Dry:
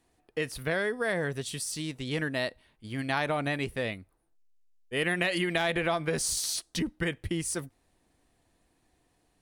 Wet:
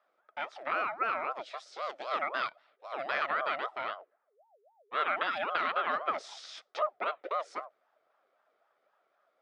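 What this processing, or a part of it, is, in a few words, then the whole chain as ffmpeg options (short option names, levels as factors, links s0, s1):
voice changer toy: -filter_complex "[0:a]aeval=exprs='val(0)*sin(2*PI*660*n/s+660*0.4/3.8*sin(2*PI*3.8*n/s))':c=same,highpass=520,equalizer=f=630:t=q:w=4:g=8,equalizer=f=940:t=q:w=4:g=-6,equalizer=f=1300:t=q:w=4:g=9,equalizer=f=1900:t=q:w=4:g=3,equalizer=f=2800:t=q:w=4:g=-6,equalizer=f=4200:t=q:w=4:g=-6,lowpass=f=4200:w=0.5412,lowpass=f=4200:w=1.3066,asettb=1/sr,asplit=3[s0][s1][s2];[s0]atrim=end=1.824[s3];[s1]atrim=start=1.82:end=3.6,asetpts=PTS-STARTPTS,afade=t=in:d=0.004:c=qsin,afade=t=out:st=1.776:d=0.004:c=qsin,highshelf=f=5600:g=11.5[s4];[s2]atrim=start=3.596[s5];[s3][s4]acrossfade=d=0.004:c1=hsin:c2=qsin[s6];[s6][s5]acrossfade=d=0.004:c1=qsin:c2=hsin,volume=0.841"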